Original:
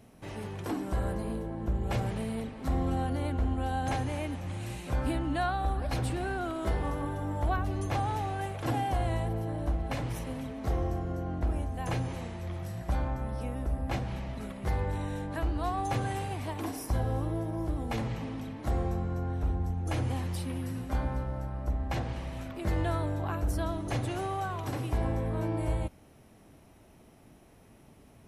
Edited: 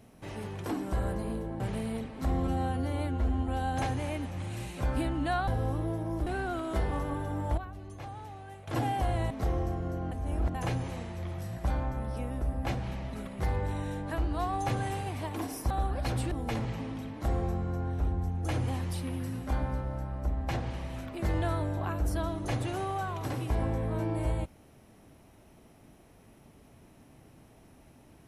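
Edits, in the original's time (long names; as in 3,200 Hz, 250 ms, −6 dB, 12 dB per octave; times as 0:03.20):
0:01.60–0:02.03: remove
0:02.90–0:03.57: time-stretch 1.5×
0:05.57–0:06.18: swap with 0:16.95–0:17.74
0:07.49–0:08.59: clip gain −12 dB
0:09.22–0:10.55: remove
0:11.36–0:11.79: reverse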